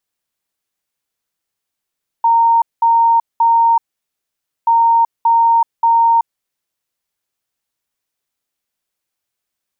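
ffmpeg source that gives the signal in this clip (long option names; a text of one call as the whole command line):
ffmpeg -f lavfi -i "aevalsrc='0.398*sin(2*PI*923*t)*clip(min(mod(mod(t,2.43),0.58),0.38-mod(mod(t,2.43),0.58))/0.005,0,1)*lt(mod(t,2.43),1.74)':duration=4.86:sample_rate=44100" out.wav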